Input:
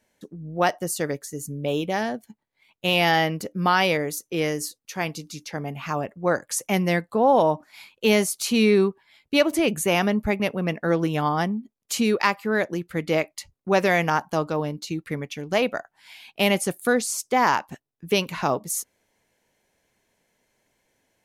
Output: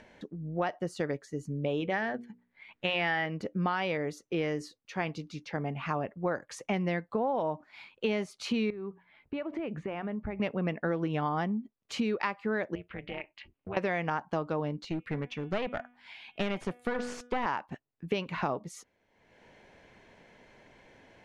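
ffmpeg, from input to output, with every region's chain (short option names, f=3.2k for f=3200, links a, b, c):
-filter_complex "[0:a]asettb=1/sr,asplit=3[a][b][c];[a]atrim=end=1.804[d];[b]atrim=start=1.8:end=3.26,asetpts=PTS-STARTPTS,afade=t=in:d=0.004:c=qsin,afade=t=out:st=1.456:d=0.004:c=qsin,equalizer=f=1.8k:t=o:w=0.82:g=8,bandreject=f=60:t=h:w=6,bandreject=f=120:t=h:w=6,bandreject=f=180:t=h:w=6,bandreject=f=240:t=h:w=6,bandreject=f=300:t=h:w=6,bandreject=f=360:t=h:w=6,bandreject=f=420:t=h:w=6,bandreject=f=480:t=h:w=6[e];[c]atrim=start=3.256[f];[d][e]acrossfade=d=0.004:c1=hsin:c2=qsin[g];[g][f]acrossfade=d=0.004:c1=qsin:c2=hsin,asettb=1/sr,asplit=3[h][i][j];[h]atrim=end=8.704[k];[i]atrim=start=8.7:end=10.39,asetpts=PTS-STARTPTS,afade=t=in:d=0.004:c=qsin,afade=t=out:st=1.686:d=0.004:c=qsin,lowpass=2.2k,acompressor=threshold=-29dB:ratio=12:attack=3.2:release=140:knee=1:detection=peak,bandreject=f=60:t=h:w=6,bandreject=f=120:t=h:w=6,bandreject=f=180:t=h:w=6[l];[j]atrim=start=10.386[m];[k][l]acrossfade=d=0.004:c1=hsin:c2=qsin[n];[n][m]acrossfade=d=0.004:c1=qsin:c2=hsin,asettb=1/sr,asplit=3[o][p][q];[o]atrim=end=12.754[r];[p]atrim=start=12.75:end=13.77,asetpts=PTS-STARTPTS,afade=t=in:d=0.004:c=qsin,afade=t=out:st=1.016:d=0.004:c=qsin,lowpass=f=2.8k:t=q:w=3.5,acompressor=threshold=-35dB:ratio=2.5:attack=3.2:release=140:knee=1:detection=peak,tremolo=f=280:d=0.857[s];[q]atrim=start=13.766[t];[r][s]acrossfade=d=0.004:c1=hsin:c2=qsin[u];[u][t]acrossfade=d=0.004:c1=qsin:c2=hsin,asettb=1/sr,asplit=3[v][w][x];[v]atrim=end=14.824[y];[w]atrim=start=14.82:end=17.46,asetpts=PTS-STARTPTS,afade=t=in:d=0.004:c=qsin,afade=t=out:st=2.636:d=0.004:c=qsin,bandreject=f=244.6:t=h:w=4,bandreject=f=489.2:t=h:w=4,bandreject=f=733.8:t=h:w=4,bandreject=f=978.4:t=h:w=4,bandreject=f=1.223k:t=h:w=4,bandreject=f=1.4676k:t=h:w=4,bandreject=f=1.7122k:t=h:w=4,bandreject=f=1.9568k:t=h:w=4,bandreject=f=2.2014k:t=h:w=4,bandreject=f=2.446k:t=h:w=4,bandreject=f=2.6906k:t=h:w=4,bandreject=f=2.9352k:t=h:w=4,bandreject=f=3.1798k:t=h:w=4,bandreject=f=3.4244k:t=h:w=4,bandreject=f=3.669k:t=h:w=4,aeval=exprs='clip(val(0),-1,0.0355)':c=same[z];[x]atrim=start=17.456[aa];[y][z]acrossfade=d=0.004:c1=hsin:c2=qsin[ab];[ab][aa]acrossfade=d=0.004:c1=qsin:c2=hsin,acompressor=mode=upward:threshold=-39dB:ratio=2.5,lowpass=2.9k,acompressor=threshold=-25dB:ratio=6,volume=-2dB"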